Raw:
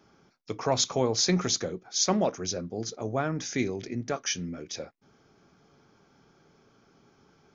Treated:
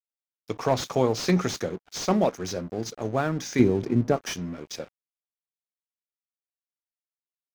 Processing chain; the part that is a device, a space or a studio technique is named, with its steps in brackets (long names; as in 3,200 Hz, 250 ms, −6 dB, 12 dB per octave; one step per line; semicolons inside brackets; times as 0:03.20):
0:03.59–0:04.27: tilt shelving filter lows +8 dB, about 1,100 Hz
early transistor amplifier (dead-zone distortion −47 dBFS; slew-rate limiting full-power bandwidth 83 Hz)
level +4 dB